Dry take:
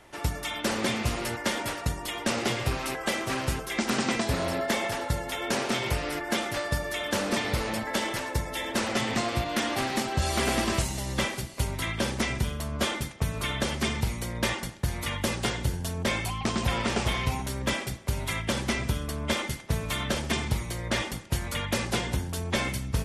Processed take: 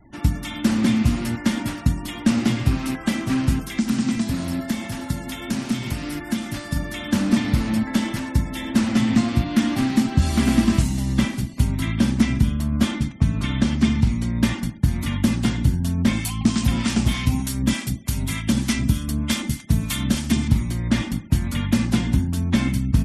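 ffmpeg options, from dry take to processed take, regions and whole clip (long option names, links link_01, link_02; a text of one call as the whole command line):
ffmpeg -i in.wav -filter_complex "[0:a]asettb=1/sr,asplit=3[link_01][link_02][link_03];[link_01]atrim=end=3.614[link_04];[link_02]atrim=start=3.61:end=6.76,asetpts=PTS-STARTPTS,afade=type=in:duration=0.004:curve=qsin,afade=type=out:start_time=3.146:duration=0.004:curve=qsin,aemphasis=mode=production:type=cd,acrossover=split=150|5800[link_05][link_06][link_07];[link_05]acompressor=threshold=-38dB:ratio=4[link_08];[link_06]acompressor=threshold=-31dB:ratio=4[link_09];[link_07]acompressor=threshold=-41dB:ratio=4[link_10];[link_08][link_09][link_10]amix=inputs=3:normalize=0[link_11];[link_03]atrim=start=6.756[link_12];[link_04][link_11]acrossfade=duration=0.004:curve1=hsin:curve2=qsin[link_13];[link_13][link_12]acrossfade=duration=0.004:curve1=qsin:curve2=hsin,asettb=1/sr,asplit=3[link_14][link_15][link_16];[link_14]atrim=end=12.924[link_17];[link_15]atrim=start=12.92:end=14.39,asetpts=PTS-STARTPTS,afade=type=in:duration=0.004:curve=qsin,afade=type=out:start_time=1.466:duration=0.004:curve=qsin,lowpass=8400,acompressor=mode=upward:threshold=-44dB:ratio=2.5:attack=3.2:release=140:knee=2.83:detection=peak[link_18];[link_16]atrim=start=14.386[link_19];[link_17][link_18]acrossfade=duration=0.004:curve1=hsin:curve2=qsin[link_20];[link_20][link_19]acrossfade=duration=0.004:curve1=qsin:curve2=hsin,asettb=1/sr,asplit=3[link_21][link_22][link_23];[link_21]atrim=end=16.134[link_24];[link_22]atrim=start=16.13:end=20.48,asetpts=PTS-STARTPTS,afade=type=in:duration=0.004:curve=qsin,afade=type=out:start_time=4.346:duration=0.004:curve=qsin,highshelf=frequency=3500:gain=10.5,acrossover=split=780[link_25][link_26];[link_25]aeval=exprs='val(0)*(1-0.5/2+0.5/2*cos(2*PI*3.3*n/s))':channel_layout=same[link_27];[link_26]aeval=exprs='val(0)*(1-0.5/2-0.5/2*cos(2*PI*3.3*n/s))':channel_layout=same[link_28];[link_27][link_28]amix=inputs=2:normalize=0[link_29];[link_23]atrim=start=20.476[link_30];[link_24][link_29]acrossfade=duration=0.004:curve1=hsin:curve2=qsin[link_31];[link_31][link_30]acrossfade=duration=0.004:curve1=qsin:curve2=hsin,afftfilt=real='re*gte(hypot(re,im),0.00447)':imag='im*gte(hypot(re,im),0.00447)':win_size=1024:overlap=0.75,lowshelf=frequency=340:width_type=q:width=3:gain=9" out.wav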